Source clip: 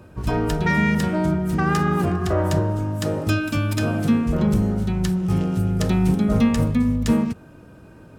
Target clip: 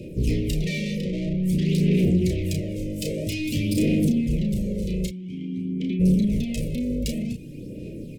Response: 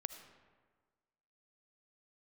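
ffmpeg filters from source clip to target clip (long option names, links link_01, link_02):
-filter_complex "[0:a]equalizer=frequency=79:width=2.3:gain=-12.5,acompressor=threshold=-21dB:ratio=6,asplit=3[link_01][link_02][link_03];[link_01]afade=type=out:start_time=5.06:duration=0.02[link_04];[link_02]asplit=3[link_05][link_06][link_07];[link_05]bandpass=frequency=270:width_type=q:width=8,volume=0dB[link_08];[link_06]bandpass=frequency=2290:width_type=q:width=8,volume=-6dB[link_09];[link_07]bandpass=frequency=3010:width_type=q:width=8,volume=-9dB[link_10];[link_08][link_09][link_10]amix=inputs=3:normalize=0,afade=type=in:start_time=5.06:duration=0.02,afade=type=out:start_time=5.99:duration=0.02[link_11];[link_03]afade=type=in:start_time=5.99:duration=0.02[link_12];[link_04][link_11][link_12]amix=inputs=3:normalize=0,asoftclip=type=tanh:threshold=-27.5dB,aphaser=in_gain=1:out_gain=1:delay=2:decay=0.52:speed=0.51:type=sinusoidal,asplit=3[link_13][link_14][link_15];[link_13]afade=type=out:start_time=0.97:duration=0.02[link_16];[link_14]adynamicsmooth=sensitivity=5:basefreq=980,afade=type=in:start_time=0.97:duration=0.02,afade=type=out:start_time=1.42:duration=0.02[link_17];[link_15]afade=type=in:start_time=1.42:duration=0.02[link_18];[link_16][link_17][link_18]amix=inputs=3:normalize=0,asuperstop=centerf=1100:order=12:qfactor=0.68,asplit=2[link_19][link_20];[link_20]adelay=33,volume=-5dB[link_21];[link_19][link_21]amix=inputs=2:normalize=0,volume=4.5dB"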